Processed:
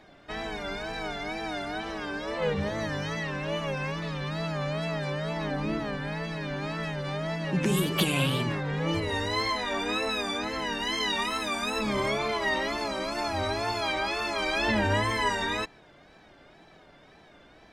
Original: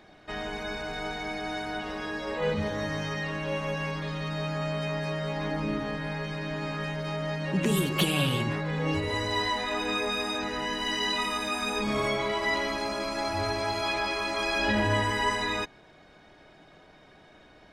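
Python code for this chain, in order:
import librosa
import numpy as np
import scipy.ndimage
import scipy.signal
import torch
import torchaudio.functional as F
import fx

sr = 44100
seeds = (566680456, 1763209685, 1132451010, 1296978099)

y = fx.wow_flutter(x, sr, seeds[0], rate_hz=2.1, depth_cents=110.0)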